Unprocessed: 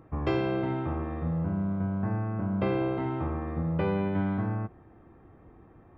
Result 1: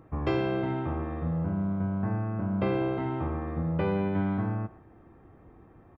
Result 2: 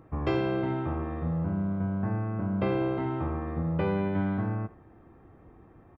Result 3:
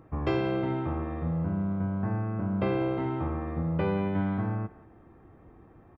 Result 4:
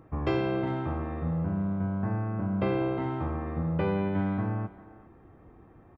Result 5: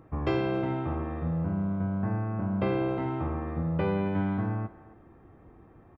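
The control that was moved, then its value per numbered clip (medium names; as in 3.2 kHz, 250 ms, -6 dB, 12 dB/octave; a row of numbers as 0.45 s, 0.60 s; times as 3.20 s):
speakerphone echo, time: 120 ms, 80 ms, 180 ms, 400 ms, 270 ms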